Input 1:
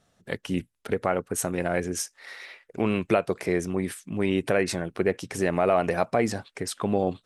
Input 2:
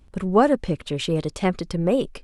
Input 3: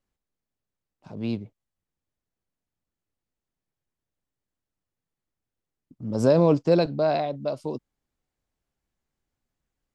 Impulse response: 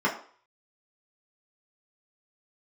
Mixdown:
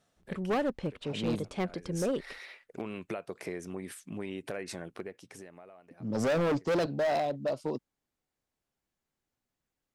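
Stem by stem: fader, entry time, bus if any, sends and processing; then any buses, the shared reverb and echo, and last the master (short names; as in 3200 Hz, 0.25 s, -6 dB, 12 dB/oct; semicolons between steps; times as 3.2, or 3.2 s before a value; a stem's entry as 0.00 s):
-4.5 dB, 0.00 s, no send, compressor 6:1, threshold -29 dBFS, peak gain reduction 12 dB; auto duck -20 dB, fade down 1.05 s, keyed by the third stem
-8.0 dB, 0.15 s, no send, high shelf 5800 Hz -11 dB; expander -49 dBFS
-1.5 dB, 0.00 s, no send, dry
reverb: off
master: low shelf 88 Hz -11 dB; overloaded stage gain 25 dB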